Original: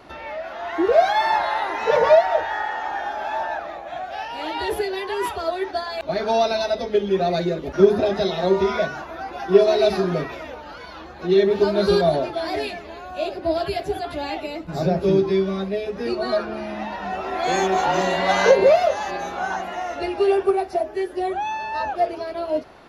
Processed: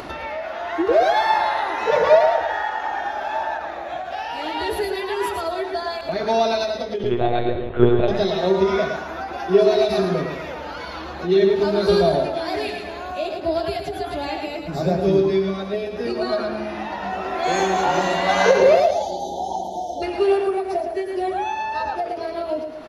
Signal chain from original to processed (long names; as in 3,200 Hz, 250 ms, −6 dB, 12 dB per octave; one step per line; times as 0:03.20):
0:07.03–0:08.08: one-pitch LPC vocoder at 8 kHz 120 Hz
0:18.80–0:20.02: time-frequency box erased 960–3,000 Hz
repeating echo 111 ms, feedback 33%, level −6 dB
upward compression, threshold −24 dBFS
every ending faded ahead of time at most 120 dB per second